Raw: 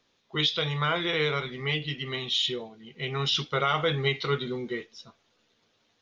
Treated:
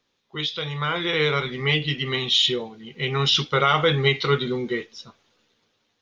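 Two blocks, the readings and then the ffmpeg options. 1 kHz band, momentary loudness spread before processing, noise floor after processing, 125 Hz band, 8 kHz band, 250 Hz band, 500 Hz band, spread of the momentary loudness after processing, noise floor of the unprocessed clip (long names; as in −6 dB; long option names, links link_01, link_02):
+5.5 dB, 10 LU, −73 dBFS, +5.5 dB, can't be measured, +5.5 dB, +6.0 dB, 11 LU, −71 dBFS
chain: -af "bandreject=frequency=660:width=12,dynaudnorm=framelen=240:gausssize=9:maxgain=11dB,volume=-2.5dB"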